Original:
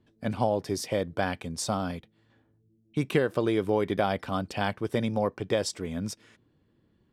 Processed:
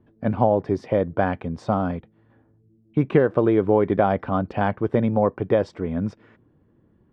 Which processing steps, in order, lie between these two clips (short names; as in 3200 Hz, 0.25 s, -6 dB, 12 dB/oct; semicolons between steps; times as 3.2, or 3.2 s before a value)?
LPF 1400 Hz 12 dB/oct; gain +7.5 dB